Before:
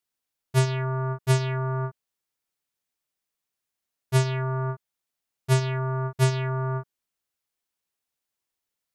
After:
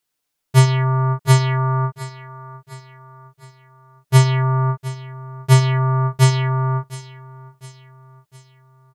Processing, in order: comb 6.7 ms, depth 54%; on a send: feedback echo 0.709 s, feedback 48%, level -16 dB; on the sum: gain +7 dB

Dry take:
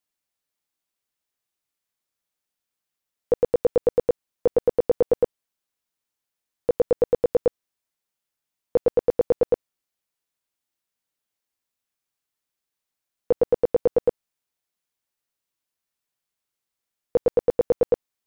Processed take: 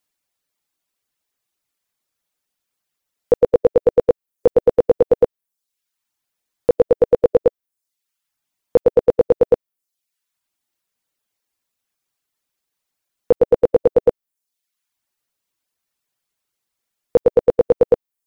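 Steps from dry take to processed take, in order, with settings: reverb removal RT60 0.7 s; gain +7 dB

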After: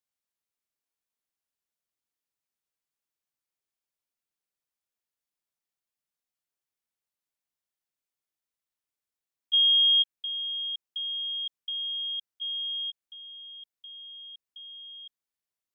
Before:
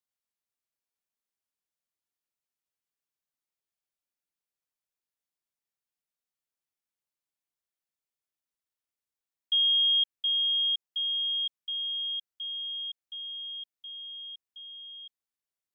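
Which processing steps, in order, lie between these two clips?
level quantiser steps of 12 dB; gain +3.5 dB

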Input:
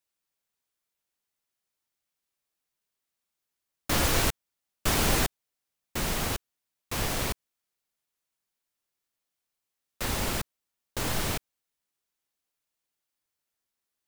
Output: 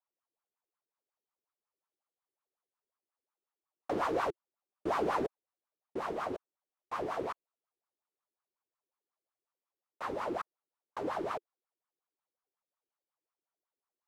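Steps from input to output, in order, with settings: wah 5.5 Hz 340–1200 Hz, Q 4.9; gain +7 dB

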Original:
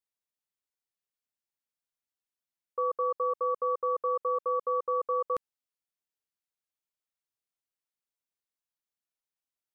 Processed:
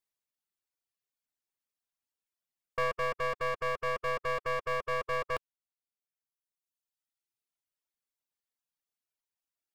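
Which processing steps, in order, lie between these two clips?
one-sided fold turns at -29.5 dBFS; reverb removal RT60 1.7 s; gain +2 dB

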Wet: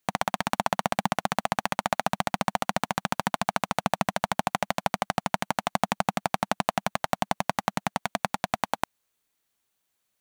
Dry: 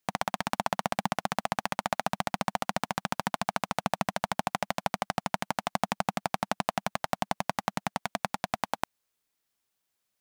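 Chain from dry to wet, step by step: notch 5100 Hz, Q 12; gain +3.5 dB

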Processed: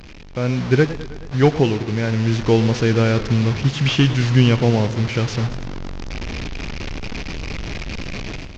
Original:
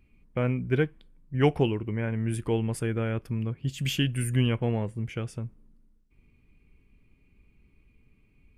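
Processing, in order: delta modulation 32 kbps, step -34 dBFS; AGC gain up to 13 dB; warbling echo 0.106 s, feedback 65%, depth 137 cents, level -15.5 dB

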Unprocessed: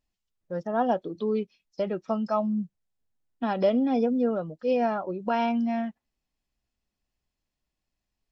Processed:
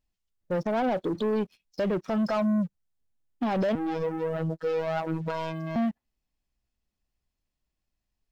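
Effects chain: low shelf 120 Hz +5.5 dB; limiter -23 dBFS, peak gain reduction 11 dB; sample leveller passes 2; 3.75–5.76 robotiser 161 Hz; gain +1.5 dB

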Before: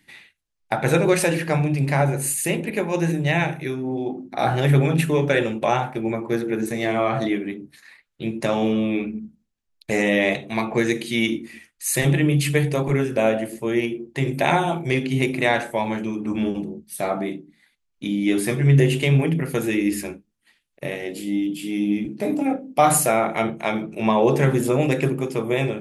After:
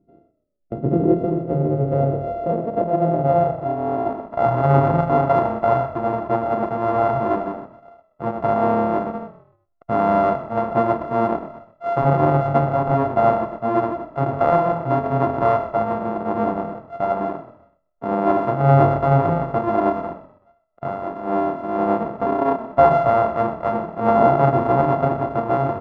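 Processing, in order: sample sorter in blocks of 64 samples; frequency-shifting echo 0.125 s, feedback 35%, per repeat -39 Hz, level -15 dB; low-pass sweep 340 Hz -> 960 Hz, 0.7–4.47

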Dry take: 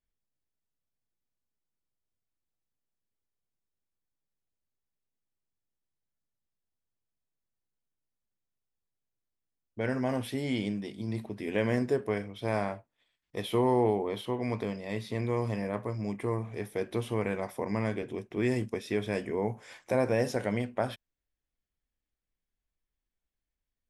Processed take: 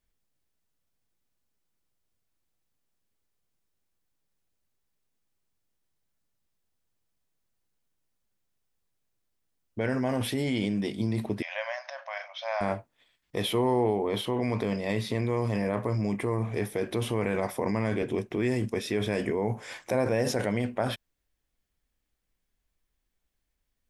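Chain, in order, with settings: in parallel at -1 dB: negative-ratio compressor -35 dBFS, ratio -0.5; 11.42–12.61 on the sum: brick-wall FIR band-pass 540–6600 Hz

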